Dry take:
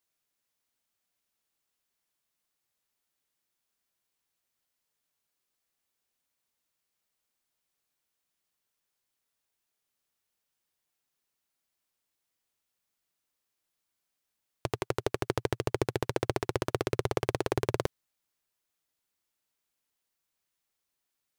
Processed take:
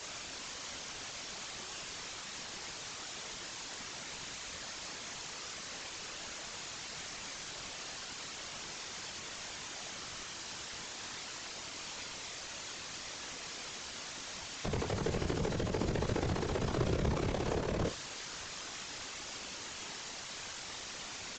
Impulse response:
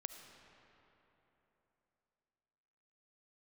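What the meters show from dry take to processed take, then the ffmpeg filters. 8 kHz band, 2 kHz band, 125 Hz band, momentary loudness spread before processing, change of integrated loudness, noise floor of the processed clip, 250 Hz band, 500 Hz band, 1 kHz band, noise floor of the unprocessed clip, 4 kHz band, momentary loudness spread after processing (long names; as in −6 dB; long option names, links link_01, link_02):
+11.0 dB, +2.5 dB, +0.5 dB, 5 LU, −7.0 dB, −45 dBFS, 0.0 dB, −4.0 dB, −2.0 dB, −84 dBFS, +8.5 dB, 7 LU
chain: -filter_complex "[0:a]aeval=exprs='val(0)+0.5*0.0447*sgn(val(0))':channel_layout=same,asplit=2[link_01][link_02];[link_02]adelay=19,volume=-7dB[link_03];[link_01][link_03]amix=inputs=2:normalize=0,aecho=1:1:26|62:0.631|0.299,afftfilt=real='hypot(re,im)*cos(2*PI*random(0))':imag='hypot(re,im)*sin(2*PI*random(1))':win_size=512:overlap=0.75,volume=-2.5dB" -ar 16000 -c:a pcm_mulaw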